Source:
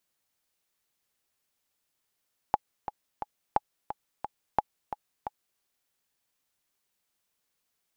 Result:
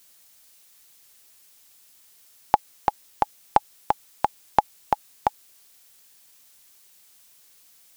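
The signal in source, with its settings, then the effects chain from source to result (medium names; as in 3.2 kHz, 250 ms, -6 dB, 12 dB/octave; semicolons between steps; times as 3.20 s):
metronome 176 bpm, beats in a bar 3, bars 3, 840 Hz, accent 11 dB -9 dBFS
treble shelf 2.9 kHz +10.5 dB; loudness maximiser +15 dB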